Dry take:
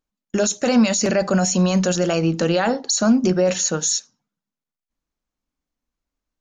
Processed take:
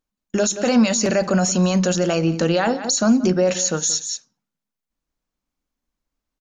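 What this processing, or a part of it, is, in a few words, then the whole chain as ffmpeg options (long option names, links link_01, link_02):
ducked delay: -filter_complex "[0:a]asplit=3[link_01][link_02][link_03];[link_02]adelay=178,volume=-4dB[link_04];[link_03]apad=whole_len=290189[link_05];[link_04][link_05]sidechaincompress=threshold=-30dB:ratio=12:attack=7.4:release=172[link_06];[link_01][link_06]amix=inputs=2:normalize=0"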